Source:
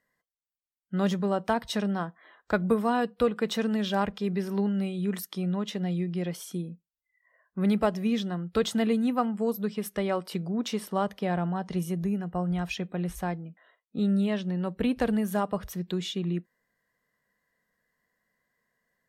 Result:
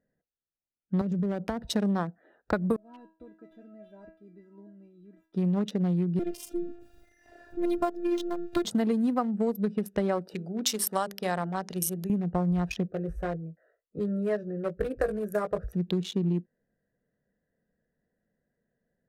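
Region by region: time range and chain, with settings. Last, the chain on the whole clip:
1.01–1.64 s: bass shelf 120 Hz +12 dB + compression 8:1, threshold -29 dBFS + three bands expanded up and down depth 40%
2.76–5.34 s: median filter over 9 samples + inharmonic resonator 320 Hz, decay 0.36 s, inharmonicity 0.002
6.19–8.65 s: jump at every zero crossing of -38 dBFS + robot voice 346 Hz
10.34–12.10 s: tilt EQ +4 dB/octave + hum notches 50/100/150/200/250/300/350/400 Hz
12.88–15.73 s: static phaser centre 880 Hz, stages 6 + doubling 19 ms -6 dB
whole clip: local Wiener filter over 41 samples; dynamic bell 2.7 kHz, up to -7 dB, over -51 dBFS, Q 1.4; compression, threshold -29 dBFS; trim +6 dB

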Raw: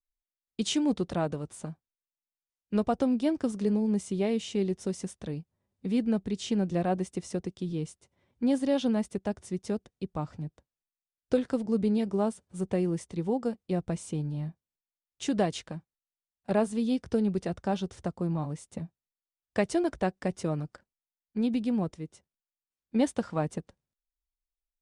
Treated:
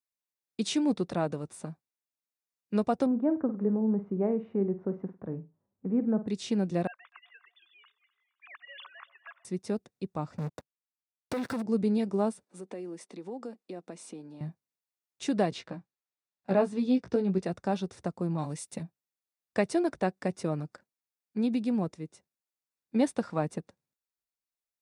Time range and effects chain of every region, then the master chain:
3.06–6.28 s: low-pass 1.4 kHz 24 dB/octave + flutter echo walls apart 8.6 m, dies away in 0.25 s
6.87–9.45 s: formants replaced by sine waves + elliptic high-pass 1.1 kHz, stop band 80 dB + echo whose repeats swap between lows and highs 125 ms, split 890 Hz, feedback 60%, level -14 dB
10.38–11.62 s: compression 4:1, threshold -41 dBFS + waveshaping leveller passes 5
12.43–14.41 s: treble shelf 9 kHz -6 dB + compression 4:1, threshold -35 dBFS + high-pass 230 Hz 24 dB/octave
15.50–17.43 s: distance through air 86 m + doubling 16 ms -5 dB
18.38–18.83 s: treble shelf 2 kHz +10 dB + band-stop 1.2 kHz, Q 15
whole clip: high-pass 130 Hz 12 dB/octave; band-stop 3.1 kHz, Q 7.9; dynamic bell 6.9 kHz, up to -5 dB, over -60 dBFS, Q 3.7

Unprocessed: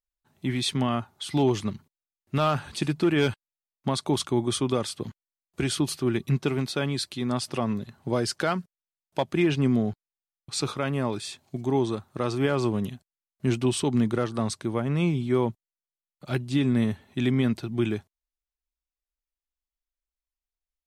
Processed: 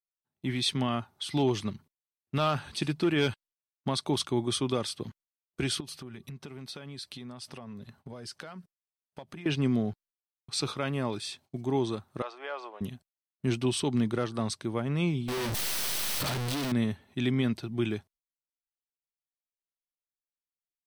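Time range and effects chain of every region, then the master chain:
5.80–9.46 s: band-stop 340 Hz, Q 6 + compression 10:1, threshold -35 dBFS
12.22–12.81 s: high-pass 600 Hz 24 dB/octave + tape spacing loss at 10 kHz 26 dB
15.28–16.72 s: one-bit comparator + level flattener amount 100%
whole clip: gate -53 dBFS, range -20 dB; band-stop 7 kHz, Q 10; dynamic bell 3.9 kHz, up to +4 dB, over -44 dBFS, Q 0.85; trim -4 dB

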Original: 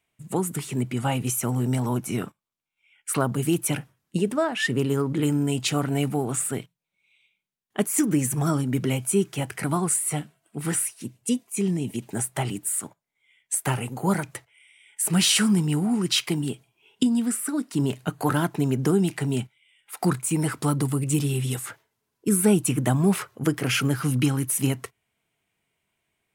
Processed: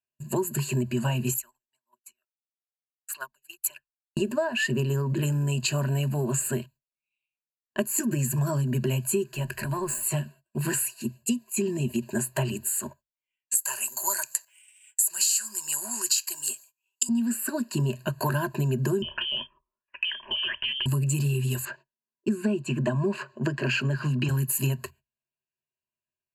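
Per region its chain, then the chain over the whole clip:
1.34–4.17 s: high-pass 1.2 kHz + phaser 1.7 Hz, delay 1.6 ms, feedback 44% + upward expansion 2.5:1, over -48 dBFS
9.31–10.03 s: compression 2:1, threshold -29 dBFS + valve stage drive 20 dB, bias 0.5
13.55–17.09 s: high-pass 1.1 kHz + resonant high shelf 4.4 kHz +13 dB, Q 1.5
19.02–20.86 s: level-controlled noise filter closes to 1.2 kHz, open at -19 dBFS + frequency inversion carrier 3.3 kHz + compression 8:1, threshold -25 dBFS
21.65–24.29 s: high-pass 140 Hz 24 dB/octave + distance through air 120 m
whole clip: gate -50 dBFS, range -25 dB; rippled EQ curve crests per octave 1.4, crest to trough 18 dB; compression, threshold -23 dBFS

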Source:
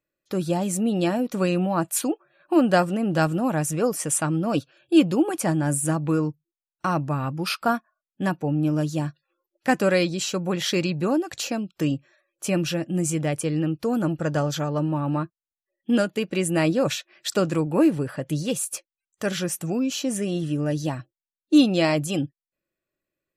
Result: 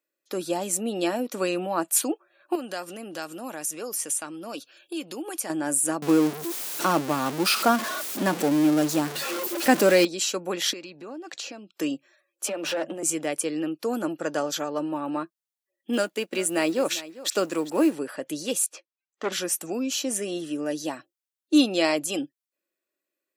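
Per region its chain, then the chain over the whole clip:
2.55–5.50 s: treble shelf 2.1 kHz +8.5 dB + band-stop 7.9 kHz, Q 13 + compression 3:1, threshold -32 dBFS
6.02–10.05 s: jump at every zero crossing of -24.5 dBFS + bass shelf 300 Hz +9.5 dB
10.73–11.74 s: low-pass 5.7 kHz + compression 10:1, threshold -32 dBFS
12.47–13.03 s: compressor with a negative ratio -26 dBFS, ratio -0.5 + rippled Chebyshev high-pass 150 Hz, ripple 9 dB + overdrive pedal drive 23 dB, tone 2 kHz, clips at -17 dBFS
15.93–17.95 s: companding laws mixed up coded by A + delay 400 ms -17 dB
18.66–19.32 s: distance through air 190 m + loudspeaker Doppler distortion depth 0.29 ms
whole clip: high-pass 260 Hz 24 dB/octave; treble shelf 4.1 kHz +6 dB; trim -1.5 dB

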